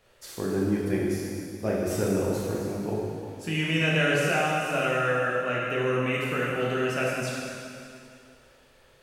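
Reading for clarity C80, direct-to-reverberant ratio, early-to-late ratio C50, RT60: 0.0 dB, -5.0 dB, -1.5 dB, 2.5 s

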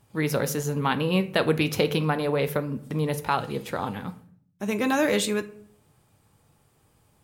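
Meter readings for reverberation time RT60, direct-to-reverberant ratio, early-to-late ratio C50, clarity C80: 0.55 s, 10.0 dB, 16.5 dB, 20.0 dB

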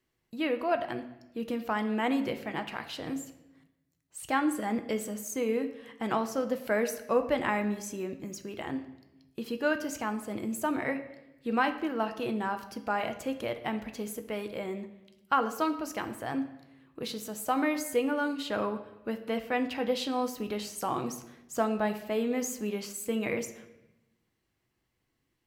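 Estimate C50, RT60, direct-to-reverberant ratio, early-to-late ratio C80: 11.5 dB, 0.90 s, 7.0 dB, 14.0 dB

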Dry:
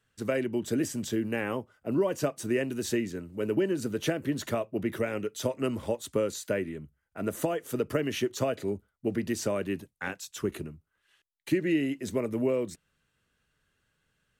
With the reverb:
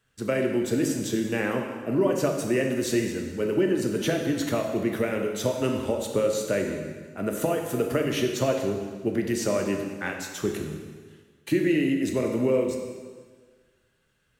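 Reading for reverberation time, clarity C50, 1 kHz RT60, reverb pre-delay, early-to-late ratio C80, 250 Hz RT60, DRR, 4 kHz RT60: 1.6 s, 4.5 dB, 1.6 s, 6 ms, 6.0 dB, 1.5 s, 2.5 dB, 1.5 s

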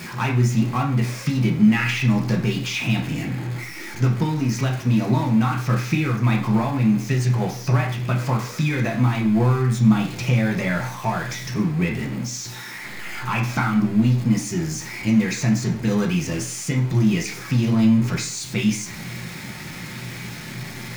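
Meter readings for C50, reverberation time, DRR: 8.5 dB, 0.55 s, -1.5 dB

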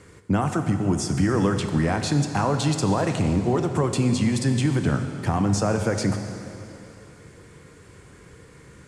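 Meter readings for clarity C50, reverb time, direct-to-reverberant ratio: 7.0 dB, 2.9 s, 6.0 dB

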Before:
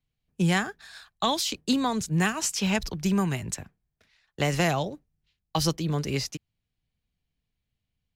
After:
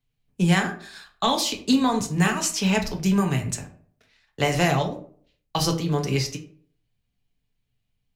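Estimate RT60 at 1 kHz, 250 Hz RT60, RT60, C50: 0.45 s, 0.60 s, 0.50 s, 11.5 dB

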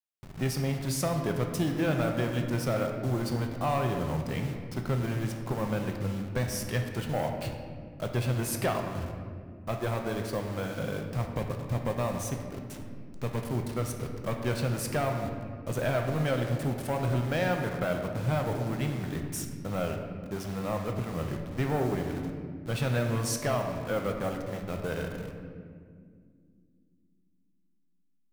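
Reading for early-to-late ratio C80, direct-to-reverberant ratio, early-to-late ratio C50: 6.5 dB, 3.0 dB, 5.0 dB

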